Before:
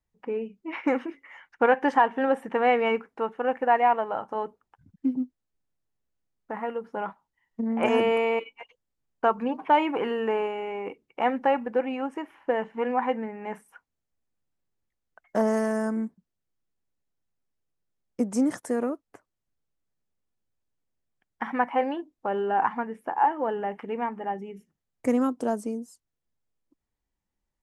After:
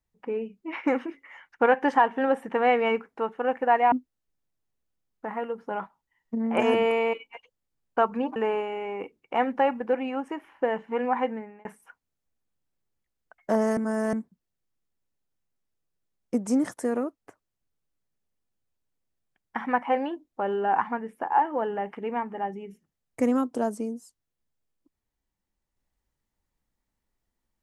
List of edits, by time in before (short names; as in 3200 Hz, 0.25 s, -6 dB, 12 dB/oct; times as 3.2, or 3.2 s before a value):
3.92–5.18 cut
9.62–10.22 cut
13.02–13.51 fade out equal-power
15.63–15.99 reverse